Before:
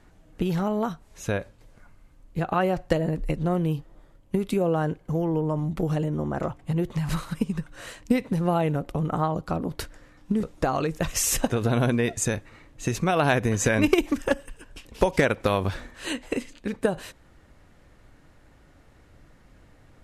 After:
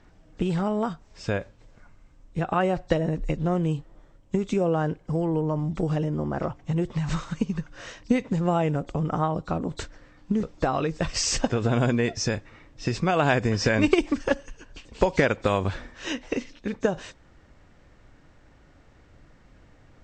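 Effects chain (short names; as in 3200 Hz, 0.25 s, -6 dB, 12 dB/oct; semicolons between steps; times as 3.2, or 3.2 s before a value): nonlinear frequency compression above 3300 Hz 1.5:1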